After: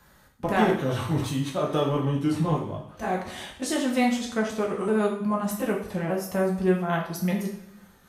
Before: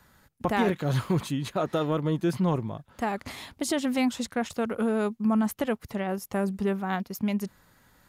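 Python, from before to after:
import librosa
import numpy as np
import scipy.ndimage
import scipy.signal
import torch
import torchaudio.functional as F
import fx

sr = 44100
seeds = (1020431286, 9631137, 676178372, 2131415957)

y = fx.pitch_ramps(x, sr, semitones=-2.5, every_ms=1220)
y = fx.rev_double_slope(y, sr, seeds[0], early_s=0.54, late_s=1.6, knee_db=-18, drr_db=-1.5)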